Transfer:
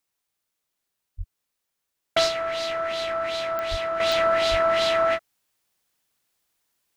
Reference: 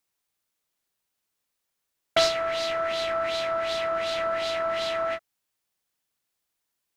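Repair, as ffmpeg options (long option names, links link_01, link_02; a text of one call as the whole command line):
ffmpeg -i in.wav -filter_complex "[0:a]adeclick=threshold=4,asplit=3[link_01][link_02][link_03];[link_01]afade=type=out:start_time=1.17:duration=0.02[link_04];[link_02]highpass=frequency=140:width=0.5412,highpass=frequency=140:width=1.3066,afade=type=in:start_time=1.17:duration=0.02,afade=type=out:start_time=1.29:duration=0.02[link_05];[link_03]afade=type=in:start_time=1.29:duration=0.02[link_06];[link_04][link_05][link_06]amix=inputs=3:normalize=0,asplit=3[link_07][link_08][link_09];[link_07]afade=type=out:start_time=3.7:duration=0.02[link_10];[link_08]highpass=frequency=140:width=0.5412,highpass=frequency=140:width=1.3066,afade=type=in:start_time=3.7:duration=0.02,afade=type=out:start_time=3.82:duration=0.02[link_11];[link_09]afade=type=in:start_time=3.82:duration=0.02[link_12];[link_10][link_11][link_12]amix=inputs=3:normalize=0,asplit=3[link_13][link_14][link_15];[link_13]afade=type=out:start_time=4.5:duration=0.02[link_16];[link_14]highpass=frequency=140:width=0.5412,highpass=frequency=140:width=1.3066,afade=type=in:start_time=4.5:duration=0.02,afade=type=out:start_time=4.62:duration=0.02[link_17];[link_15]afade=type=in:start_time=4.62:duration=0.02[link_18];[link_16][link_17][link_18]amix=inputs=3:normalize=0,asetnsamples=nb_out_samples=441:pad=0,asendcmd='4 volume volume -6.5dB',volume=0dB" out.wav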